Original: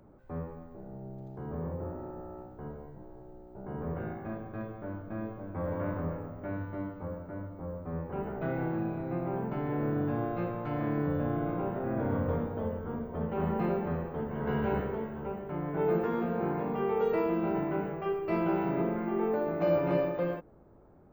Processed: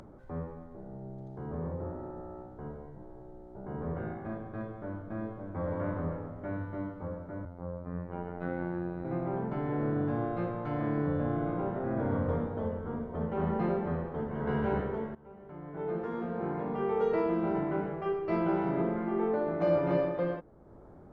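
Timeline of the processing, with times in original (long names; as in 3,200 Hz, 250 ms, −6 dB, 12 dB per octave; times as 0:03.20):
0:07.45–0:09.05: phases set to zero 87.6 Hz
0:15.15–0:17.04: fade in, from −19 dB
whole clip: low-pass filter 9,500 Hz; parametric band 2,600 Hz −7 dB 0.25 octaves; upward compression, threshold −44 dBFS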